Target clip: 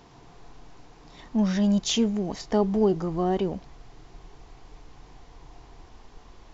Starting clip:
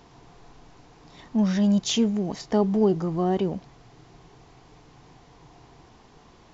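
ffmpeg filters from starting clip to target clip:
ffmpeg -i in.wav -af "asubboost=boost=6.5:cutoff=52" out.wav

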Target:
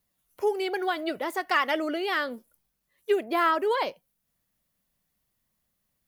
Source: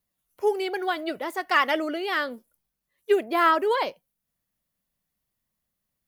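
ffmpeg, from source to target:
ffmpeg -i in.wav -af "acompressor=threshold=-37dB:ratio=1.5,volume=4dB" out.wav

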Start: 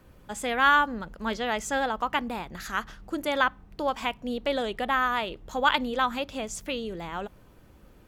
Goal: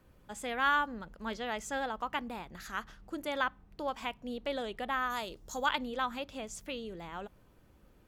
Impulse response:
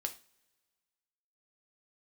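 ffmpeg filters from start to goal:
-filter_complex "[0:a]asettb=1/sr,asplit=3[link_01][link_02][link_03];[link_01]atrim=end=5.104[link_04];[link_02]atrim=start=5.1:end=5.66,asetpts=PTS-STARTPTS,afade=type=in:duration=0.004:curve=qsin,afade=type=out:start_time=0.556:duration=0.004:curve=qsin,highshelf=frequency=4000:width_type=q:width=1.5:gain=11[link_05];[link_03]atrim=start=5.656[link_06];[link_04][link_05]acrossfade=duration=0.004:curve1=hsin:curve2=qsin[link_07];[link_07][link_06]acrossfade=duration=0.004:curve1=qsin:curve2=hsin,volume=-8dB"

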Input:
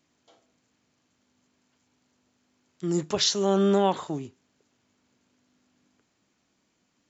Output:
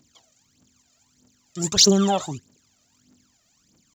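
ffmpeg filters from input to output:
ffmpeg -i in.wav -af "bass=frequency=250:gain=4,treble=frequency=4000:gain=13,atempo=1.8,aphaser=in_gain=1:out_gain=1:delay=1.7:decay=0.76:speed=1.6:type=triangular" out.wav

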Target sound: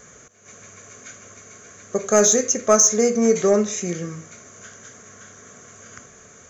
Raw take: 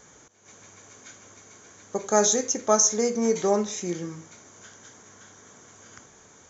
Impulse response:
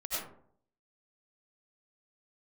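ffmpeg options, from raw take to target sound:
-af "acontrast=66,superequalizer=6b=0.501:9b=0.316:13b=0.562:14b=0.631"

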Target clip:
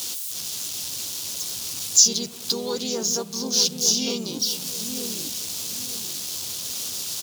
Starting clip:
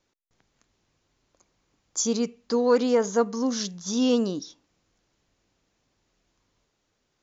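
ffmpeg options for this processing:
ffmpeg -i in.wav -filter_complex "[0:a]aeval=exprs='val(0)+0.5*0.0133*sgn(val(0))':channel_layout=same,highpass=frequency=85:width=0.5412,highpass=frequency=85:width=1.3066,acompressor=threshold=-36dB:ratio=1.5,aexciter=amount=5.9:drive=7.5:freq=3200,asplit=3[link_01][link_02][link_03];[link_02]asetrate=33038,aresample=44100,atempo=1.33484,volume=-15dB[link_04];[link_03]asetrate=37084,aresample=44100,atempo=1.18921,volume=-4dB[link_05];[link_01][link_04][link_05]amix=inputs=3:normalize=0,asplit=2[link_06][link_07];[link_07]adelay=901,lowpass=frequency=910:poles=1,volume=-5dB,asplit=2[link_08][link_09];[link_09]adelay=901,lowpass=frequency=910:poles=1,volume=0.33,asplit=2[link_10][link_11];[link_11]adelay=901,lowpass=frequency=910:poles=1,volume=0.33,asplit=2[link_12][link_13];[link_13]adelay=901,lowpass=frequency=910:poles=1,volume=0.33[link_14];[link_08][link_10][link_12][link_14]amix=inputs=4:normalize=0[link_15];[link_06][link_15]amix=inputs=2:normalize=0,volume=-3.5dB" out.wav

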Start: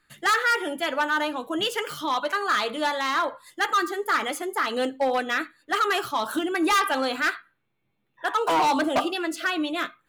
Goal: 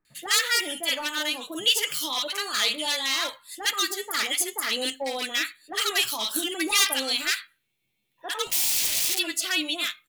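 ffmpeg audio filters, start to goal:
ffmpeg -i in.wav -filter_complex "[0:a]asplit=3[link_01][link_02][link_03];[link_01]afade=type=out:start_time=8.45:duration=0.02[link_04];[link_02]aeval=exprs='(mod(26.6*val(0)+1,2)-1)/26.6':channel_layout=same,afade=type=in:start_time=8.45:duration=0.02,afade=type=out:start_time=9.13:duration=0.02[link_05];[link_03]afade=type=in:start_time=9.13:duration=0.02[link_06];[link_04][link_05][link_06]amix=inputs=3:normalize=0,aexciter=amount=4.7:drive=6.1:freq=2100,acrossover=split=1100[link_07][link_08];[link_08]adelay=50[link_09];[link_07][link_09]amix=inputs=2:normalize=0,volume=-6.5dB" out.wav

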